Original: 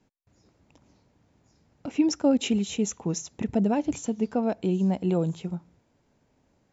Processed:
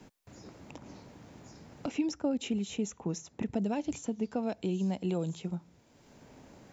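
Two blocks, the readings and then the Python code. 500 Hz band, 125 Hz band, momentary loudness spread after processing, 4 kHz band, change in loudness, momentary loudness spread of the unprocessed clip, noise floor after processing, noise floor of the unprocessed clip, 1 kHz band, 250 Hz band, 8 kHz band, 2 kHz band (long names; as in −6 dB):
−7.5 dB, −6.5 dB, 20 LU, −7.5 dB, −7.5 dB, 10 LU, −64 dBFS, −69 dBFS, −7.5 dB, −7.5 dB, can't be measured, −5.5 dB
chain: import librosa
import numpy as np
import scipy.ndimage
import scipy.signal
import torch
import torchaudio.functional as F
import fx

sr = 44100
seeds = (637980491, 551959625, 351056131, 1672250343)

y = fx.band_squash(x, sr, depth_pct=70)
y = y * librosa.db_to_amplitude(-7.0)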